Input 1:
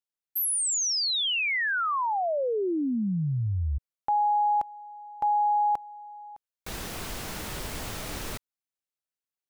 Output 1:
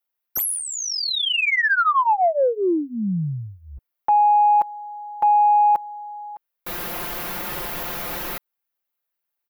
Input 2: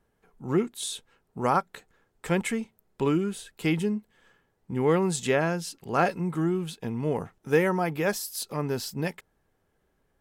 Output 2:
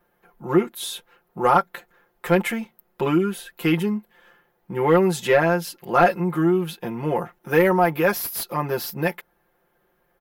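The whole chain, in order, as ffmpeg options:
-filter_complex "[0:a]aecho=1:1:5.7:0.89,aexciter=amount=11.8:drive=1.4:freq=11k,asplit=2[a][b];[b]highpass=f=720:p=1,volume=15dB,asoftclip=type=tanh:threshold=-1.5dB[c];[a][c]amix=inputs=2:normalize=0,lowpass=f=1.5k:p=1,volume=-6dB"

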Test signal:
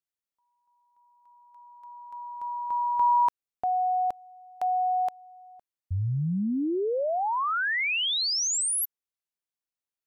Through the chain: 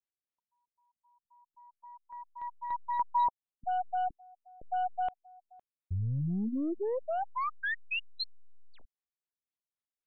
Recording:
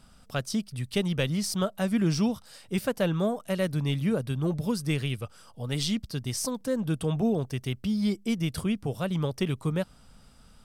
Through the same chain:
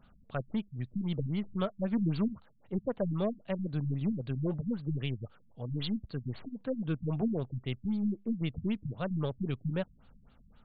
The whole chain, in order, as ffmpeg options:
-af "aeval=exprs='0.188*(cos(1*acos(clip(val(0)/0.188,-1,1)))-cos(1*PI/2))+0.0075*(cos(8*acos(clip(val(0)/0.188,-1,1)))-cos(8*PI/2))':c=same,afftfilt=real='re*lt(b*sr/1024,220*pow(4700/220,0.5+0.5*sin(2*PI*3.8*pts/sr)))':imag='im*lt(b*sr/1024,220*pow(4700/220,0.5+0.5*sin(2*PI*3.8*pts/sr)))':win_size=1024:overlap=0.75,volume=-4.5dB"

